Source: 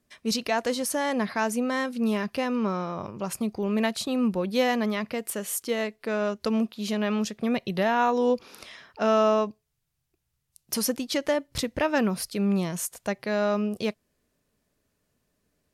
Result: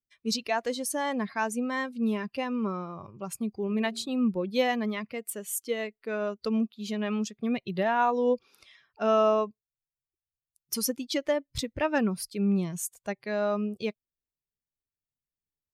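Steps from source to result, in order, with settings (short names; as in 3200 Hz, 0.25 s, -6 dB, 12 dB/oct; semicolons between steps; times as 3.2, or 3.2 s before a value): per-bin expansion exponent 1.5; 3.67–4.09 de-hum 45.92 Hz, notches 18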